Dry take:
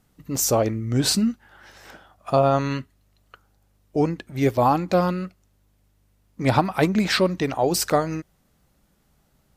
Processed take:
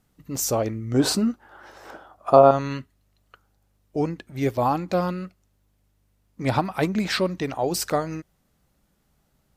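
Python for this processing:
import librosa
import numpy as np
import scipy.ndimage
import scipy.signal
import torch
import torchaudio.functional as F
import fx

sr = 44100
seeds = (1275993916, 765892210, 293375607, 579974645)

y = fx.band_shelf(x, sr, hz=620.0, db=9.5, octaves=2.6, at=(0.94, 2.51))
y = y * 10.0 ** (-3.5 / 20.0)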